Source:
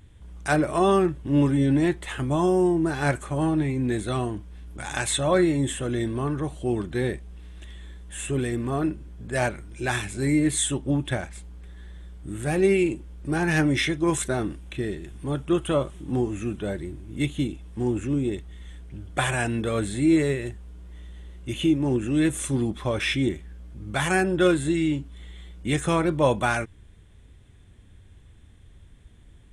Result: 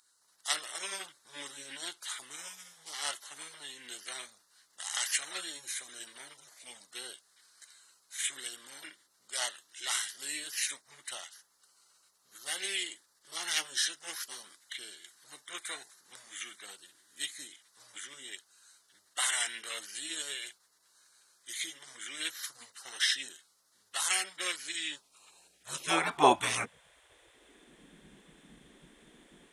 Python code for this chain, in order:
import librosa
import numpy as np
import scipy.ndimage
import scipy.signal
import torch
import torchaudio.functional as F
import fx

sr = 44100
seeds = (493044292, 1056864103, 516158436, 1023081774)

y = fx.filter_sweep_highpass(x, sr, from_hz=2500.0, to_hz=93.0, start_s=24.74, end_s=27.86, q=6.2)
y = fx.spec_gate(y, sr, threshold_db=-20, keep='weak')
y = F.gain(torch.from_numpy(y), 4.5).numpy()